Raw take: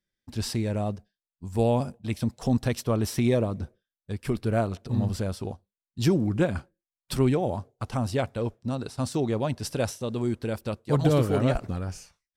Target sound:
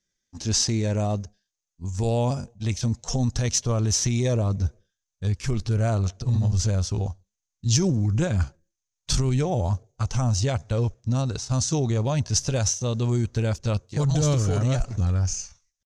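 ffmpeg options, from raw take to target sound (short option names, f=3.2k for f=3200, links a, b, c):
-filter_complex "[0:a]asubboost=boost=4.5:cutoff=120,acrossover=split=4400[a][b];[a]alimiter=limit=-18.5dB:level=0:latency=1:release=70[c];[c][b]amix=inputs=2:normalize=0,atempo=0.78,lowpass=f=6.4k:t=q:w=8.1,volume=3dB"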